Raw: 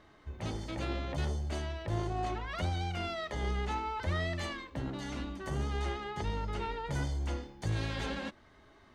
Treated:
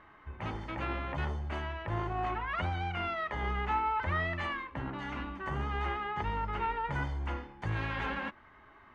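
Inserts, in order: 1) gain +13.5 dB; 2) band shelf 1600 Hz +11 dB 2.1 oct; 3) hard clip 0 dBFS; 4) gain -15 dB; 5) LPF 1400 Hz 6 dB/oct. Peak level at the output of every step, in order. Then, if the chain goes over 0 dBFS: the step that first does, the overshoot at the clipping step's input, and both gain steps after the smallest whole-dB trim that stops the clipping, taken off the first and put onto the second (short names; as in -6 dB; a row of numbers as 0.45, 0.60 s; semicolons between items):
-8.5, -3.0, -3.0, -18.0, -20.5 dBFS; no overload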